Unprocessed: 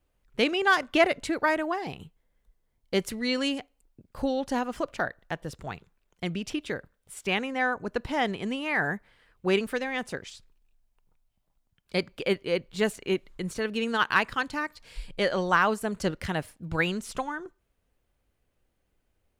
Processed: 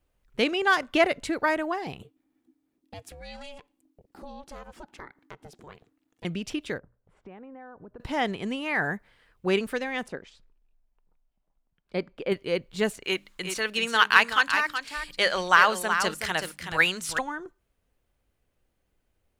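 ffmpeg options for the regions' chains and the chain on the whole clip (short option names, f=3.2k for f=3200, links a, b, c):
-filter_complex "[0:a]asettb=1/sr,asplit=3[a][b][c];[a]atrim=end=2.024[d];[b]atrim=start=2.02:end=6.25,asetpts=PTS-STARTPTS,afade=t=in:d=0.004:c=qsin,afade=t=out:st=4.226:d=0.004:c=qsin,acompressor=threshold=-45dB:ratio=2:attack=3.2:release=140:knee=1:detection=peak,aeval=exprs='val(0)*sin(2*PI*290*n/s)':c=same[e];[c]atrim=start=6.246[f];[d][e]acrossfade=d=0.004:c1=hsin:c2=qsin[g];[g][f]acrossfade=d=0.004:c1=qsin:c2=hsin,asettb=1/sr,asplit=3[h][i][j];[h]atrim=end=6.784[k];[i]atrim=start=6.78:end=8,asetpts=PTS-STARTPTS,afade=t=in:d=0.004:c=qsin,afade=t=out:st=1.216:d=0.004:c=qsin,lowpass=1k,bandreject=f=60:t=h:w=6,bandreject=f=120:t=h:w=6,acompressor=threshold=-44dB:ratio=4:attack=3.2:release=140:knee=1:detection=peak[l];[j]atrim=start=7.996[m];[k][l]acrossfade=d=0.004:c1=hsin:c2=qsin[n];[n][m]acrossfade=d=0.004:c1=qsin:c2=hsin,asettb=1/sr,asplit=3[o][p][q];[o]atrim=end=10.084[r];[p]atrim=start=10.08:end=12.32,asetpts=PTS-STARTPTS,afade=t=in:d=0.004:c=qsin,afade=t=out:st=2.236:d=0.004:c=qsin,lowpass=f=1.3k:p=1,equalizer=f=100:w=1.9:g=-13[s];[q]atrim=start=12.316[t];[r][s]acrossfade=d=0.004:c1=hsin:c2=qsin[u];[u][t]acrossfade=d=0.004:c1=qsin:c2=hsin,asettb=1/sr,asplit=3[v][w][x];[v]atrim=end=13.044[y];[w]atrim=start=13.04:end=17.19,asetpts=PTS-STARTPTS,afade=t=in:d=0.004:c=qsin,afade=t=out:st=4.146:d=0.004:c=qsin,tiltshelf=f=650:g=-8.5,bandreject=f=50:t=h:w=6,bandreject=f=100:t=h:w=6,bandreject=f=150:t=h:w=6,bandreject=f=200:t=h:w=6,bandreject=f=250:t=h:w=6,bandreject=f=300:t=h:w=6,aecho=1:1:374:0.398,atrim=end_sample=183015[z];[x]atrim=start=17.186[aa];[y][z]acrossfade=d=0.004:c1=hsin:c2=qsin[ab];[ab][aa]acrossfade=d=0.004:c1=qsin:c2=hsin"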